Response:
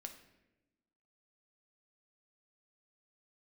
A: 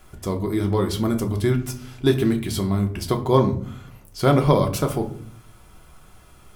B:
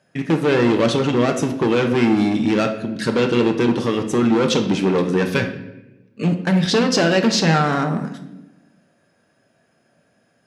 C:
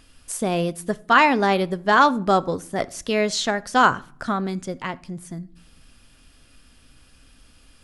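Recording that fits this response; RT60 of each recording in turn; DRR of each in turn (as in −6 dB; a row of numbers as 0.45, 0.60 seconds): B; 0.55 s, 1.0 s, non-exponential decay; 3.5, 4.5, 15.0 decibels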